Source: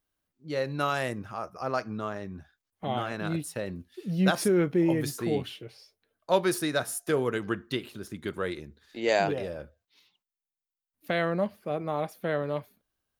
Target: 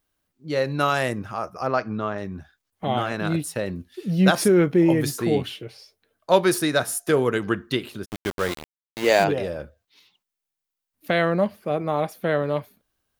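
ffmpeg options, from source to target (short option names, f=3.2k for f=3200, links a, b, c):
-filter_complex "[0:a]asettb=1/sr,asplit=3[a][b][c];[a]atrim=end=1.674[d];[b]atrim=start=1.67:end=2.18,asetpts=PTS-STARTPTS,afade=t=in:d=0.004:c=qsin,afade=t=out:st=0.506:d=0.004:c=qsin,lowpass=3.9k[e];[c]atrim=start=2.176[f];[d][e]acrossfade=d=0.004:c1=hsin:c2=qsin[g];[g][f]acrossfade=d=0.004:c1=qsin:c2=hsin,asplit=3[h][i][j];[h]afade=t=out:st=8.04:d=0.02[k];[i]aeval=exprs='val(0)*gte(abs(val(0)),0.0224)':c=same,afade=t=in:st=8.04:d=0.02,afade=t=out:st=9.23:d=0.02[l];[j]afade=t=in:st=9.23:d=0.02[m];[k][l][m]amix=inputs=3:normalize=0,volume=6.5dB"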